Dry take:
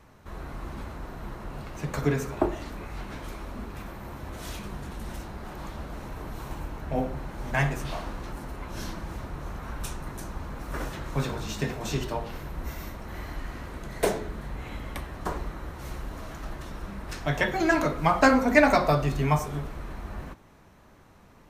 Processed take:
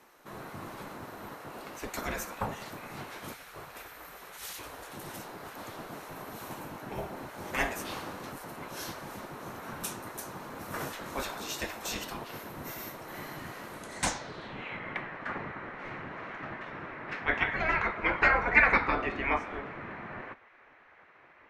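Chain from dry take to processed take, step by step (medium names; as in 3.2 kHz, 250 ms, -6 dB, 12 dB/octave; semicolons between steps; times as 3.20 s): 3.33–4.91 s: high-pass 110 Hz 12 dB/octave; spectral gate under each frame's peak -10 dB weak; low-pass sweep 13 kHz -> 2.1 kHz, 13.71–14.80 s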